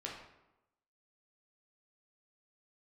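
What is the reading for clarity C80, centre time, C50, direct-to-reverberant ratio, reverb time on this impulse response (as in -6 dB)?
6.5 dB, 44 ms, 3.5 dB, -3.0 dB, 0.95 s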